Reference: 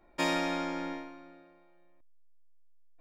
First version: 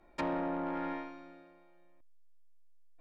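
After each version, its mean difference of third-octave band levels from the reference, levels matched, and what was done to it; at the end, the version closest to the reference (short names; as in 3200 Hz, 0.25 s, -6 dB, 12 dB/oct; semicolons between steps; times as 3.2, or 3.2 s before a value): 4.5 dB: treble ducked by the level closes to 790 Hz, closed at -29 dBFS; dynamic EQ 1200 Hz, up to +5 dB, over -48 dBFS, Q 0.99; soft clip -28.5 dBFS, distortion -14 dB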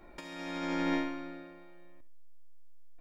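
7.5 dB: bell 740 Hz -3.5 dB 0.78 oct; negative-ratio compressor -38 dBFS, ratio -0.5; on a send: feedback echo 68 ms, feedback 25%, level -15.5 dB; on the sum: gain +4.5 dB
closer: first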